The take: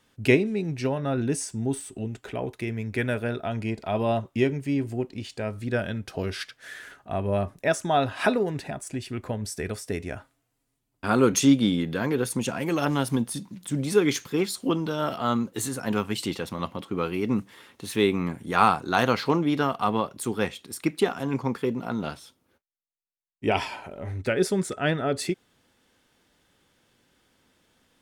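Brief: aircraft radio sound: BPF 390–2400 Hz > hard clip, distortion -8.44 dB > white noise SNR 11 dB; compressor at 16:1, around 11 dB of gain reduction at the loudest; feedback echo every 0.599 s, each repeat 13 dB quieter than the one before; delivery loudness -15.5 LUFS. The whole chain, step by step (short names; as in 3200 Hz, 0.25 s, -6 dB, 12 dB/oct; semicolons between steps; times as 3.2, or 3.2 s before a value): compressor 16:1, threshold -24 dBFS; BPF 390–2400 Hz; feedback echo 0.599 s, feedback 22%, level -13 dB; hard clip -31 dBFS; white noise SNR 11 dB; gain +22.5 dB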